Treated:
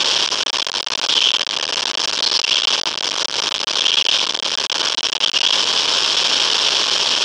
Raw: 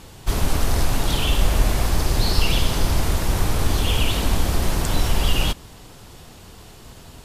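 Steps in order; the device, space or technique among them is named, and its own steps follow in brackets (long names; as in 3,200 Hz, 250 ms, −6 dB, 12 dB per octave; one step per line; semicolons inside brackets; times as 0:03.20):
home computer beeper (sign of each sample alone; loudspeaker in its box 710–5,500 Hz, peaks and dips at 740 Hz −9 dB, 1,300 Hz −4 dB, 2,000 Hz −8 dB, 3,200 Hz +9 dB, 5,400 Hz +8 dB)
level +5.5 dB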